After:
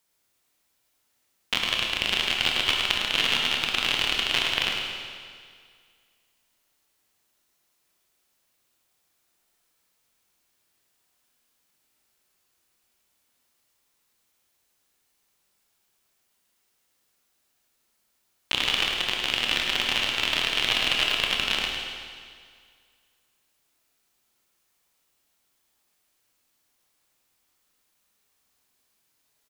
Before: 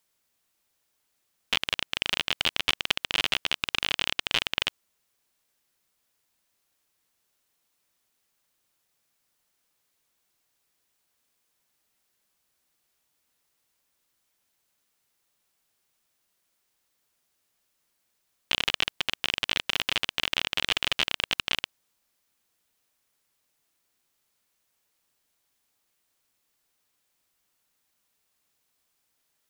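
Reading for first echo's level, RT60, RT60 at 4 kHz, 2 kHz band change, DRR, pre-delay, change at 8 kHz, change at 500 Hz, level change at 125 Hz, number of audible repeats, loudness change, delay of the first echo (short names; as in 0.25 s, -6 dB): -7.0 dB, 2.0 s, 1.9 s, +3.5 dB, -1.0 dB, 25 ms, +3.5 dB, +3.5 dB, +3.5 dB, 1, +3.0 dB, 0.105 s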